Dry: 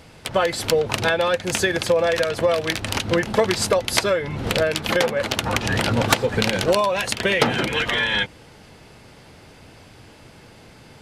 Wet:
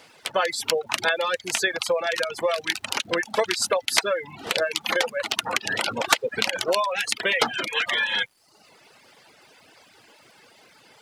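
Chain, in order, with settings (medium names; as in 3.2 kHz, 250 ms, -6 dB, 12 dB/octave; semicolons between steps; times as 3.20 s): reverb removal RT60 0.81 s; frequency weighting A; reverb removal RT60 0.51 s; treble shelf 8.4 kHz +4.5 dB; crackle 460 per s -51 dBFS; trim -1.5 dB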